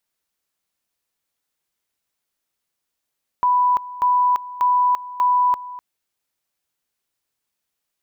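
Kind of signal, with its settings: two-level tone 990 Hz -13.5 dBFS, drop 17 dB, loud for 0.34 s, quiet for 0.25 s, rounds 4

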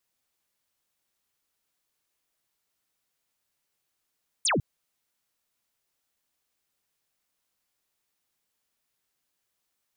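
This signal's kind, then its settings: laser zap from 10000 Hz, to 100 Hz, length 0.15 s sine, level -21.5 dB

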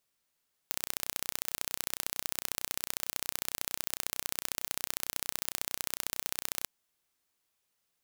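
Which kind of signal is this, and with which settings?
pulse train 31/s, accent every 2, -4 dBFS 5.96 s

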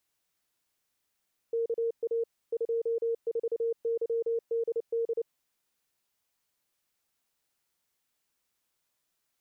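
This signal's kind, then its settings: Morse "KA 24YDD" 29 wpm 461 Hz -26 dBFS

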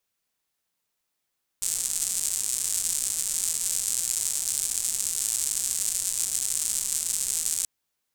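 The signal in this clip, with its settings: rain from filtered ticks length 6.03 s, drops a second 210, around 7900 Hz, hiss -23 dB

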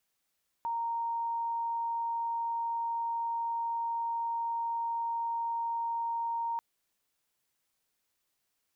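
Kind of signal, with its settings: tone sine 928 Hz -30 dBFS 5.94 s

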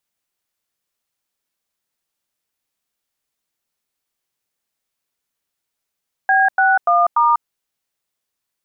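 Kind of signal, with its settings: DTMF "B61*", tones 0.195 s, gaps 96 ms, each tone -13.5 dBFS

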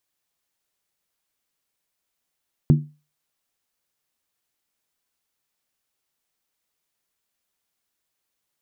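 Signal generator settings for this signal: skin hit, lowest mode 149 Hz, decay 0.31 s, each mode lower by 7 dB, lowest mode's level -8 dB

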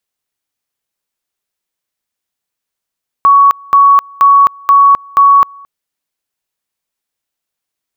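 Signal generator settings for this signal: two-level tone 1120 Hz -2.5 dBFS, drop 28.5 dB, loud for 0.26 s, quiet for 0.22 s, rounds 5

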